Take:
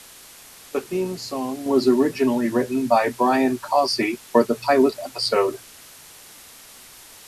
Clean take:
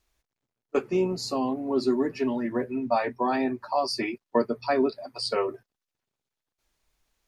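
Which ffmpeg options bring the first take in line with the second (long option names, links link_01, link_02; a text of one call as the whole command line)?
ffmpeg -i in.wav -af "afwtdn=0.0071,asetnsamples=nb_out_samples=441:pad=0,asendcmd='1.66 volume volume -7dB',volume=0dB" out.wav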